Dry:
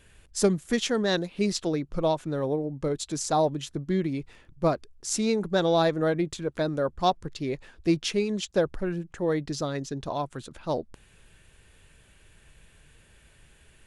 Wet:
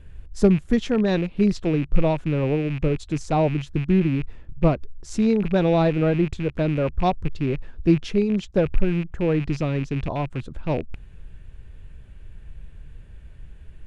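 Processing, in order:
loose part that buzzes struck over −40 dBFS, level −24 dBFS
RIAA equalisation playback

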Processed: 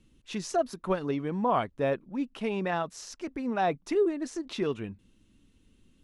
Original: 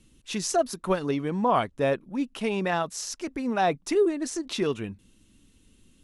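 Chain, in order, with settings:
low-pass filter 3,100 Hz 6 dB per octave
level −3 dB

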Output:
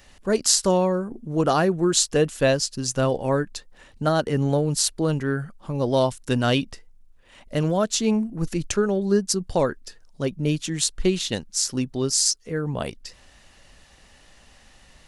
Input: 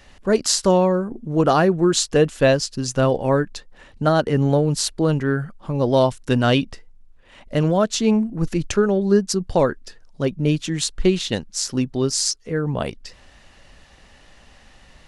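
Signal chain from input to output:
high-shelf EQ 6,400 Hz +10.5 dB
level −4 dB

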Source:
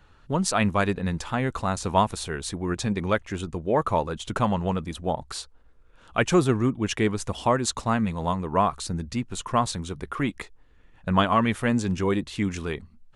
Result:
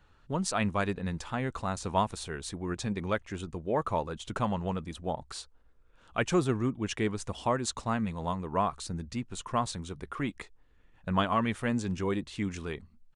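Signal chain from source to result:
downsampling to 22,050 Hz
level −6.5 dB

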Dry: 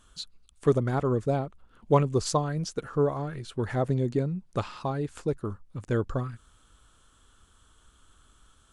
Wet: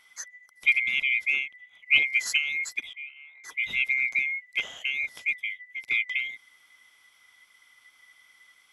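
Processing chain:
neighbouring bands swapped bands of 2,000 Hz
0:02.93–0:03.44: four-pole ladder band-pass 1,100 Hz, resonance 50%

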